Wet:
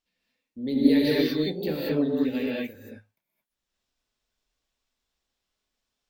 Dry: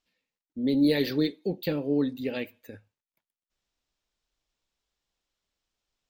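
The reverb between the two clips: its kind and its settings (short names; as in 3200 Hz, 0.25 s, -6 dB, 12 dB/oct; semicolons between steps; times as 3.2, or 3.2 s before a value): non-linear reverb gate 0.25 s rising, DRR -5.5 dB; gain -4 dB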